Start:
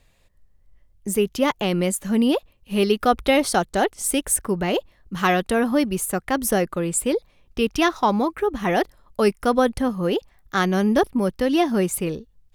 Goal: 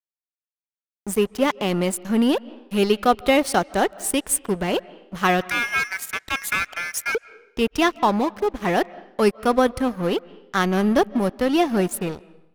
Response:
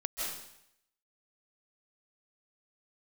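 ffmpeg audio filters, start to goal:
-filter_complex "[0:a]asettb=1/sr,asplit=3[link_01][link_02][link_03];[link_01]atrim=end=5.414[link_04];[link_02]atrim=start=5.41:end=7.15,asetpts=PTS-STARTPTS,afade=type=in:duration=0.004:curve=qsin,afade=type=out:start_time=1.736:duration=0.004:curve=qsin,aeval=exprs='val(0)*sin(2*PI*1900*n/s)':channel_layout=same[link_05];[link_03]atrim=start=7.146[link_06];[link_04][link_05]acrossfade=duration=0.004:curve1=hsin:curve2=qsin[link_07];[link_07][link_06]acrossfade=duration=0.004:curve1=qsin:curve2=hsin,aeval=exprs='sgn(val(0))*max(abs(val(0))-0.0237,0)':channel_layout=same,asplit=2[link_08][link_09];[1:a]atrim=start_sample=2205,lowpass=3200[link_10];[link_09][link_10]afir=irnorm=-1:irlink=0,volume=-22dB[link_11];[link_08][link_11]amix=inputs=2:normalize=0,volume=1dB"

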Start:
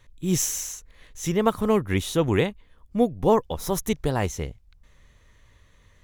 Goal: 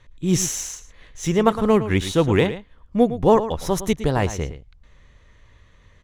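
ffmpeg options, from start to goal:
ffmpeg -i in.wav -af "aecho=1:1:111:0.237,adynamicsmooth=sensitivity=6.5:basefreq=6500,volume=4dB" out.wav

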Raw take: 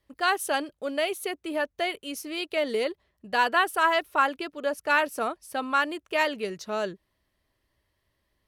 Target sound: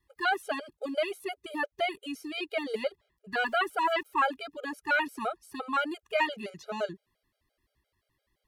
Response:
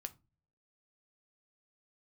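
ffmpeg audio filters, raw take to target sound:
-filter_complex "[0:a]asettb=1/sr,asplit=3[link_01][link_02][link_03];[link_01]atrim=end=3.424[link_04];[link_02]atrim=start=3.42:end=4.06,asetpts=PTS-STARTPTS,afade=type=in:duration=0.004:curve=qsin,afade=type=out:start_time=0.636:duration=0.004:curve=qsin,aeval=exprs='val(0)*gte(abs(val(0)),0.00398)':channel_layout=same[link_05];[link_03]atrim=start=4.056[link_06];[link_04][link_05]acrossfade=duration=0.004:curve1=hsin:curve2=qsin[link_07];[link_07][link_06]acrossfade=duration=0.004:curve1=qsin:curve2=hsin,acrossover=split=3900[link_08][link_09];[link_09]acompressor=threshold=-46dB:ratio=4:attack=1:release=60[link_10];[link_08][link_10]amix=inputs=2:normalize=0,afftfilt=real='re*gt(sin(2*PI*5.8*pts/sr)*(1-2*mod(floor(b*sr/1024/410),2)),0)':imag='im*gt(sin(2*PI*5.8*pts/sr)*(1-2*mod(floor(b*sr/1024/410),2)),0)':win_size=1024:overlap=0.75"

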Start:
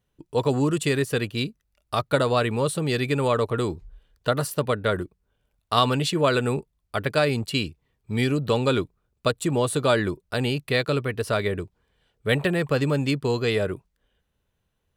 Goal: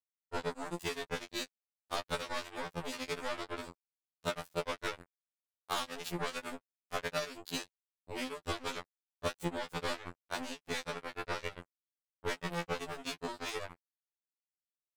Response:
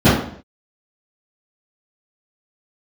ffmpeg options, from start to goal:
-filter_complex "[0:a]asettb=1/sr,asplit=3[link_01][link_02][link_03];[link_01]atrim=end=9.924[link_04];[link_02]atrim=start=9.92:end=12.49,asetpts=PTS-STARTPTS,afade=type=in:duration=0.004:curve=qsin,afade=type=out:start_time=2.566:duration=0.004:curve=qsin,highshelf=frequency=2300:gain=-4.5[link_05];[link_03]atrim=start=12.486[link_06];[link_04][link_05]acrossfade=duration=0.004:curve1=hsin:curve2=qsin[link_07];[link_07][link_06]acrossfade=duration=0.004:curve1=qsin:curve2=hsin,acompressor=threshold=-28dB:ratio=5,acrusher=bits=3:mix=0:aa=0.5,afftfilt=real='re*2*eq(mod(b,4),0)':imag='im*2*eq(mod(b,4),0)':win_size=2048:overlap=0.75,volume=-1dB"

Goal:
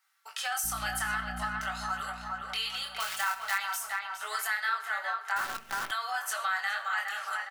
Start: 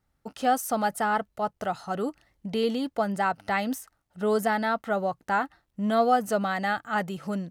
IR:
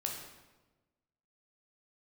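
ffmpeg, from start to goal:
-filter_complex "[0:a]flanger=delay=19:depth=7.2:speed=0.51,alimiter=limit=-21.5dB:level=0:latency=1:release=34,asplit=2[link_01][link_02];[1:a]atrim=start_sample=2205,atrim=end_sample=6174[link_03];[link_02][link_03]afir=irnorm=-1:irlink=0,volume=-4.5dB[link_04];[link_01][link_04]amix=inputs=2:normalize=0,asettb=1/sr,asplit=3[link_05][link_06][link_07];[link_05]atrim=end=3.004[link_08];[link_06]atrim=start=3:end=3.58,asetpts=PTS-STARTPTS,afade=type=in:duration=0.004:curve=qsin,afade=type=out:start_time=0.576:duration=0.004:curve=qsin,acrusher=bits=3:mode=log:mix=0:aa=0.000001[link_09];[link_07]atrim=start=3.576[link_10];[link_08][link_09]acrossfade=duration=0.004:curve1=hsin:curve2=qsin[link_11];[link_11][link_10]acrossfade=duration=0.004:curve1=qsin:curve2=hsin,highpass=frequency=1200:width=0.5412,highpass=frequency=1200:width=1.3066,asettb=1/sr,asplit=3[link_12][link_13][link_14];[link_12]atrim=end=0.644[link_15];[link_13]atrim=start=0.64:end=1.6,asetpts=PTS-STARTPTS,afade=type=in:duration=0.004:curve=qsin,afade=type=out:start_time=0.956:duration=0.004:curve=qsin,aeval=exprs='val(0)+0.00631*(sin(2*PI*60*n/s)+sin(2*PI*2*60*n/s)/2+sin(2*PI*3*60*n/s)/3+sin(2*PI*4*60*n/s)/4+sin(2*PI*5*60*n/s)/5)':channel_layout=same[link_16];[link_14]atrim=start=1.596[link_17];[link_15][link_16]acrossfade=duration=0.004:curve1=hsin:curve2=qsin[link_18];[link_18][link_17]acrossfade=duration=0.004:curve1=qsin:curve2=hsin,aecho=1:1:5.2:0.51,asplit=2[link_19][link_20];[link_20]adelay=412,lowpass=frequency=2000:poles=1,volume=-4.5dB,asplit=2[link_21][link_22];[link_22]adelay=412,lowpass=frequency=2000:poles=1,volume=0.51,asplit=2[link_23][link_24];[link_24]adelay=412,lowpass=frequency=2000:poles=1,volume=0.51,asplit=2[link_25][link_26];[link_26]adelay=412,lowpass=frequency=2000:poles=1,volume=0.51,asplit=2[link_27][link_28];[link_28]adelay=412,lowpass=frequency=2000:poles=1,volume=0.51,asplit=2[link_29][link_30];[link_30]adelay=412,lowpass=frequency=2000:poles=1,volume=0.51,asplit=2[link_31][link_32];[link_32]adelay=412,lowpass=frequency=2000:poles=1,volume=0.51[link_33];[link_19][link_21][link_23][link_25][link_27][link_29][link_31][link_33]amix=inputs=8:normalize=0,asettb=1/sr,asplit=3[link_34][link_35][link_36];[link_34]atrim=end=5.364[link_37];[link_35]atrim=start=5.36:end=5.91,asetpts=PTS-STARTPTS,afade=type=in:duration=0.004:curve=qsin,afade=type=out:start_time=0.546:duration=0.004:curve=qsin,acrusher=bits=7:dc=4:mix=0:aa=0.000001[link_38];[link_36]atrim=start=5.906[link_39];[link_37][link_38]acrossfade=duration=0.004:curve1=hsin:curve2=qsin[link_40];[link_40][link_39]acrossfade=duration=0.004:curve1=qsin:curve2=hsin,acompressor=threshold=-44dB:ratio=2,volume=9dB"

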